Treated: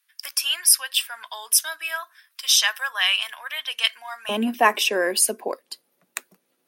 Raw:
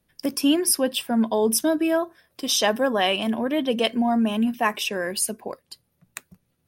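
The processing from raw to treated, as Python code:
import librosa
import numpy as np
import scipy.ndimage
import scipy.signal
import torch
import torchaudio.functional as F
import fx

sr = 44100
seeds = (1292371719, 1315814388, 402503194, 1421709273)

y = fx.highpass(x, sr, hz=fx.steps((0.0, 1300.0), (4.29, 280.0)), slope=24)
y = y * 10.0 ** (5.5 / 20.0)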